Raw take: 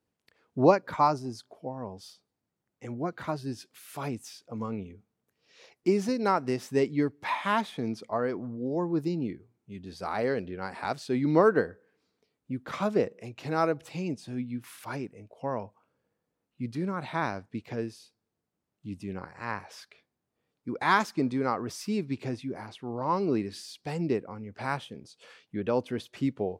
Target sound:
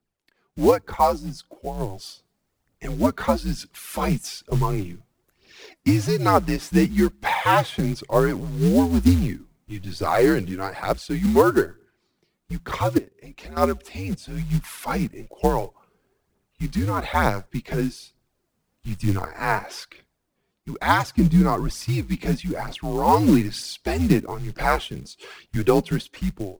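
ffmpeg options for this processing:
-filter_complex "[0:a]aphaser=in_gain=1:out_gain=1:delay=4.1:decay=0.46:speed=1.1:type=triangular,asettb=1/sr,asplit=3[s0][s1][s2];[s0]atrim=end=12.984[s3];[s1]atrim=start=12.98:end=13.57,asetpts=PTS-STARTPTS,afade=t=in:d=0.004:c=qsin,afade=t=out:st=0.586:d=0.004:c=qsin,acompressor=threshold=0.00891:ratio=5[s4];[s2]atrim=start=13.566[s5];[s3][s4]acrossfade=d=0.004:c1=hsin:c2=qsin[s6];[s6][s5]acrossfade=d=0.004:c1=qsin:c2=hsin,acrusher=bits=5:mode=log:mix=0:aa=0.000001,dynaudnorm=f=240:g=7:m=4.22,afreqshift=-86,asettb=1/sr,asplit=3[s7][s8][s9];[s7]atrim=end=21.054[s10];[s8]atrim=start=21.05:end=21.88,asetpts=PTS-STARTPTS,afade=t=in:d=0.004:c=qsin,afade=t=out:st=0.826:d=0.004:c=qsin,lowshelf=f=230:g=10.5[s11];[s9]atrim=start=21.876[s12];[s10][s11]acrossfade=d=0.004:c1=hsin:c2=qsin[s13];[s13][s12]acrossfade=d=0.004:c1=qsin:c2=hsin,volume=0.891"

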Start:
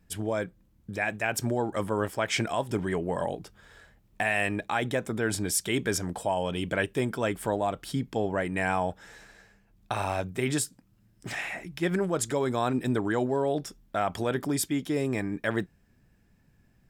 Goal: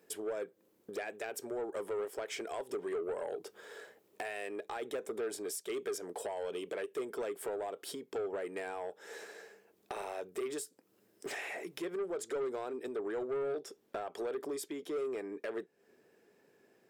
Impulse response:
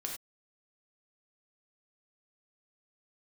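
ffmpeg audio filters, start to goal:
-af "asetnsamples=n=441:p=0,asendcmd='11.85 highshelf g -2',highshelf=f=8800:g=6,acompressor=threshold=0.0112:ratio=8,highpass=f=420:t=q:w=4.9,asoftclip=type=tanh:threshold=0.0237,volume=1.12"

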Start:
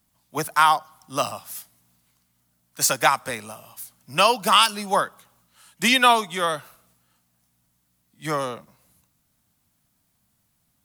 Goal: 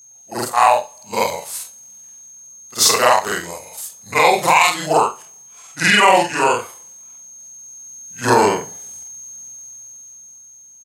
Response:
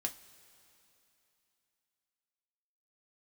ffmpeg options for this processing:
-af "afftfilt=real='re':imag='-im':win_size=4096:overlap=0.75,highpass=f=350:p=1,equalizer=f=3200:t=o:w=1:g=-4,aeval=exprs='val(0)+0.00251*sin(2*PI*8100*n/s)':c=same,asetrate=35002,aresample=44100,atempo=1.25992,acontrast=29,aecho=1:1:62|124:0.158|0.0301,adynamicequalizer=threshold=0.0112:dfrequency=2300:dqfactor=2:tfrequency=2300:tqfactor=2:attack=5:release=100:ratio=0.375:range=2:mode=boostabove:tftype=bell,dynaudnorm=f=350:g=9:m=3.98,alimiter=level_in=2:limit=0.891:release=50:level=0:latency=1,volume=0.891"

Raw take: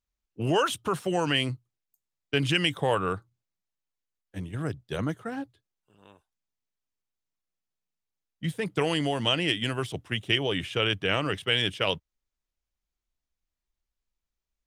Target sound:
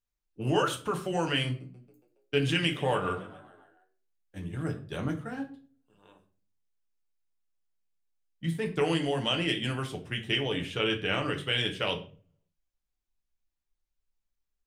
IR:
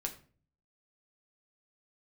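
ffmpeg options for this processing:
-filter_complex "[0:a]asettb=1/sr,asplit=3[s0][s1][s2];[s0]atrim=end=1.464[s3];[s1]atrim=start=1.46:end=4.79,asetpts=PTS-STARTPTS,afade=t=in:d=0.004:c=qsin,afade=t=out:st=3.326:d=0.004:c=qsin,asplit=6[s4][s5][s6][s7][s8][s9];[s5]adelay=139,afreqshift=57,volume=0.133[s10];[s6]adelay=278,afreqshift=114,volume=0.0759[s11];[s7]adelay=417,afreqshift=171,volume=0.0432[s12];[s8]adelay=556,afreqshift=228,volume=0.0248[s13];[s9]adelay=695,afreqshift=285,volume=0.0141[s14];[s4][s10][s11][s12][s13][s14]amix=inputs=6:normalize=0,atrim=end_sample=146853[s15];[s2]atrim=start=4.786[s16];[s3][s15]acrossfade=d=0.004:c1=hsin:c2=qsin[s17];[s17][s16]acrossfade=d=0.004:c1=qsin:c2=hsin[s18];[1:a]atrim=start_sample=2205[s19];[s18][s19]afir=irnorm=-1:irlink=0,volume=0.708"

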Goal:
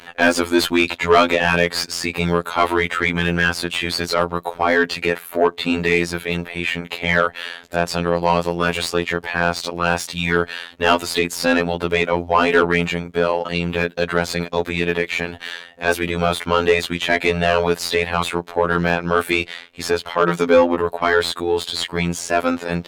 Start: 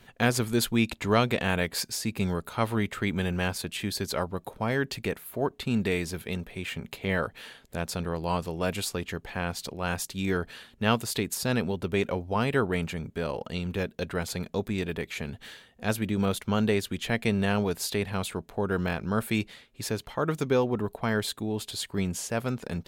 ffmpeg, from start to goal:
-filter_complex "[0:a]afftfilt=real='hypot(re,im)*cos(PI*b)':imag='0':win_size=2048:overlap=0.75,asplit=2[s0][s1];[s1]highpass=f=720:p=1,volume=12.6,asoftclip=type=tanh:threshold=0.531[s2];[s0][s2]amix=inputs=2:normalize=0,lowpass=f=2800:p=1,volume=0.501,volume=1.88"

